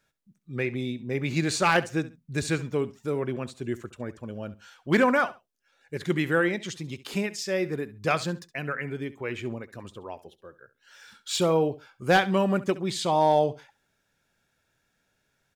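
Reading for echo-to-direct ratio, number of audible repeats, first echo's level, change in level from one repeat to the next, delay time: -17.0 dB, 2, -17.0 dB, -13.5 dB, 68 ms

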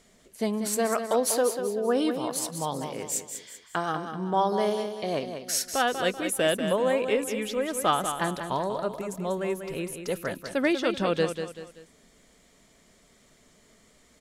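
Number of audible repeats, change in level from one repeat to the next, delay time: 3, -8.0 dB, 0.192 s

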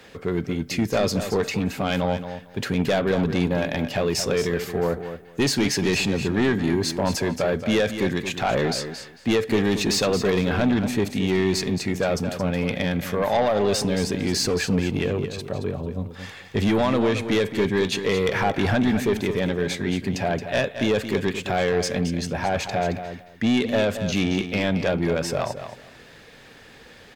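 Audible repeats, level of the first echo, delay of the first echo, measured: 2, -10.0 dB, 0.223 s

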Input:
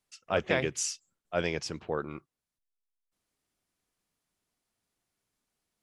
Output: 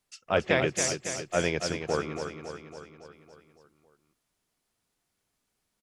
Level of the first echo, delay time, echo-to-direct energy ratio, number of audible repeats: -7.5 dB, 0.278 s, -5.5 dB, 6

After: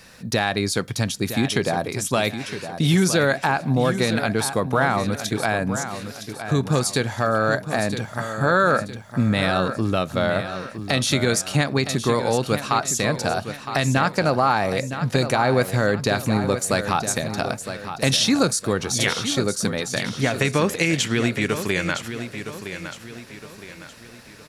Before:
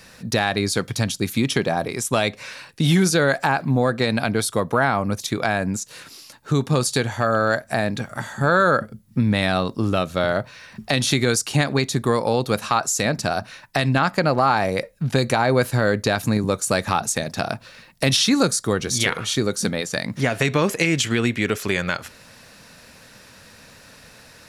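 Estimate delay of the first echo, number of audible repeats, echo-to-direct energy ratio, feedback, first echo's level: 0.963 s, 4, -9.0 dB, 41%, -10.0 dB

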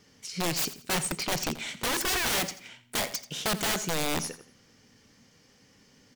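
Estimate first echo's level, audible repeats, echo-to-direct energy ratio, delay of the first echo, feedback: -15.0 dB, 3, -14.5 dB, 85 ms, 32%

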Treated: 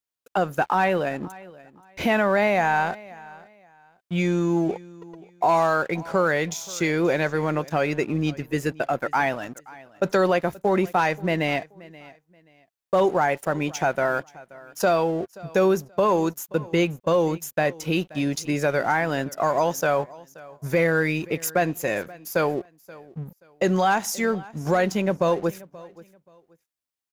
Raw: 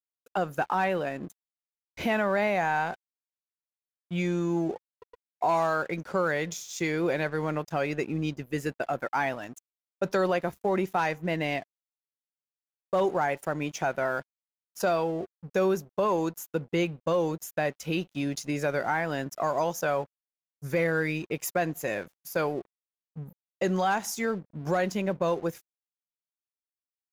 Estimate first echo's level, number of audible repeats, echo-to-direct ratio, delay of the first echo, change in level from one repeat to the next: -21.0 dB, 2, -20.5 dB, 0.529 s, -12.0 dB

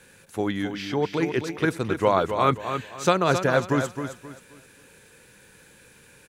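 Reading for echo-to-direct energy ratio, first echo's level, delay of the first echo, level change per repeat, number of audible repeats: -7.5 dB, -8.0 dB, 0.265 s, -10.5 dB, 3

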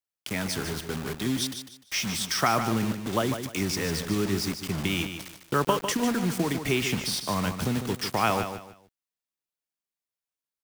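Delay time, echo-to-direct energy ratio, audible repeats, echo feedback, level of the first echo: 0.15 s, -8.0 dB, 3, 28%, -8.5 dB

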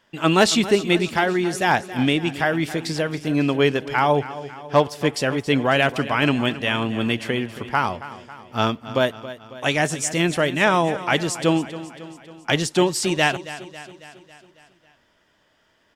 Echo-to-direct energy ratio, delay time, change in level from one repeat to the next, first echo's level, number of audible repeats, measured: -13.5 dB, 0.274 s, -5.0 dB, -15.0 dB, 5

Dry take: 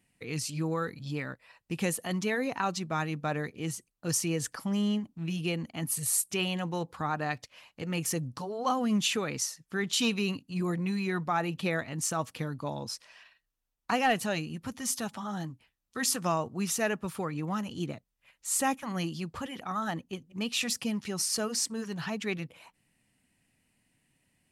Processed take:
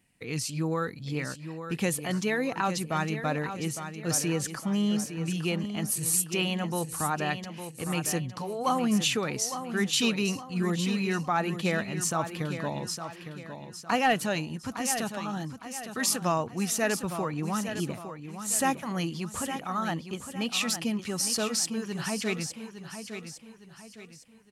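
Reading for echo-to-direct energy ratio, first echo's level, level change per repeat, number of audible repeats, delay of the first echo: -9.0 dB, -9.5 dB, -8.0 dB, 4, 0.859 s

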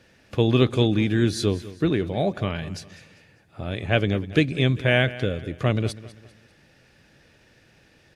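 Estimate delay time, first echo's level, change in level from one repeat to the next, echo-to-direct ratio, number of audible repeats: 0.198 s, -17.0 dB, -8.0 dB, -16.5 dB, 3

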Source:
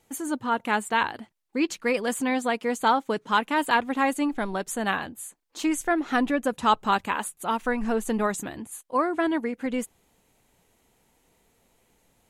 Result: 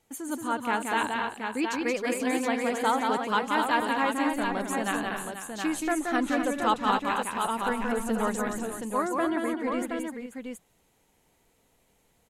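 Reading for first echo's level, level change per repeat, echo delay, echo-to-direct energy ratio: -4.0 dB, no steady repeat, 0.176 s, -0.5 dB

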